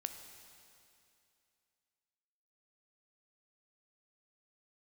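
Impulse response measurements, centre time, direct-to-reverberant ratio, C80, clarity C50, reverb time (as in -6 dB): 35 ms, 6.5 dB, 8.5 dB, 7.5 dB, 2.6 s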